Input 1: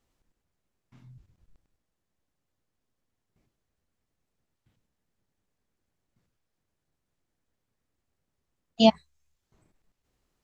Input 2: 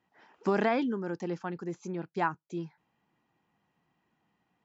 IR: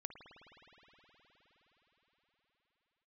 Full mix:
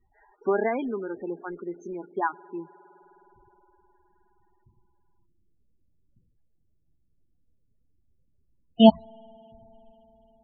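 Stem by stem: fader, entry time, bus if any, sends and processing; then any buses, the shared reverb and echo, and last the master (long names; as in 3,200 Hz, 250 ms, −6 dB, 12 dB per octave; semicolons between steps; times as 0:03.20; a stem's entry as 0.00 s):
+2.5 dB, 0.00 s, send −17.5 dB, automatic ducking −24 dB, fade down 0.50 s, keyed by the second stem
+0.5 dB, 0.00 s, send −9 dB, high-pass filter 280 Hz 24 dB per octave; comb filter 4.9 ms, depth 34%; floating-point word with a short mantissa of 2 bits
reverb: on, pre-delay 52 ms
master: low-shelf EQ 120 Hz +11 dB; spectral peaks only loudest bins 16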